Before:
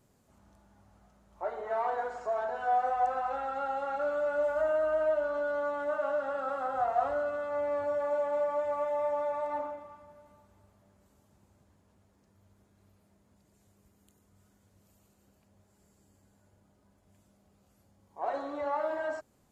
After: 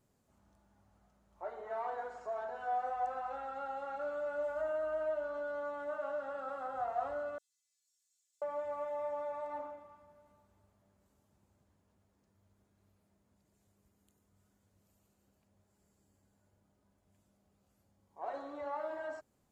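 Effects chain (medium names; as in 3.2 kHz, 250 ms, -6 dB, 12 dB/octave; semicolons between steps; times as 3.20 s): 7.38–8.42 s: inverse Chebyshev high-pass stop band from 980 Hz, stop band 80 dB; trim -7.5 dB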